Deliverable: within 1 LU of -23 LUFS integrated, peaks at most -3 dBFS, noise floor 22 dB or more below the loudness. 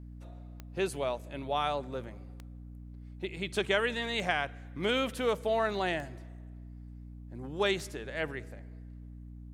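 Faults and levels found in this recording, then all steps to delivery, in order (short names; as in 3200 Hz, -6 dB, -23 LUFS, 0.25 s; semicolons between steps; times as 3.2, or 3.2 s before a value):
clicks 5; hum 60 Hz; harmonics up to 300 Hz; hum level -44 dBFS; loudness -32.5 LUFS; peak -13.0 dBFS; loudness target -23.0 LUFS
-> de-click; notches 60/120/180/240/300 Hz; gain +9.5 dB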